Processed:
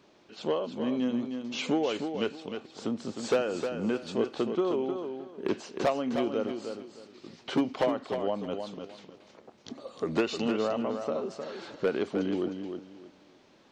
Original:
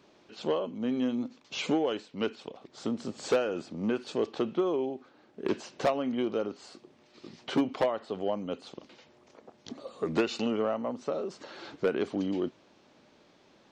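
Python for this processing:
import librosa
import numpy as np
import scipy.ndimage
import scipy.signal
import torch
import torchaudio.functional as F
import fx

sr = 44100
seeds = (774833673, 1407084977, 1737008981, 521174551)

y = fx.echo_feedback(x, sr, ms=309, feedback_pct=24, wet_db=-7)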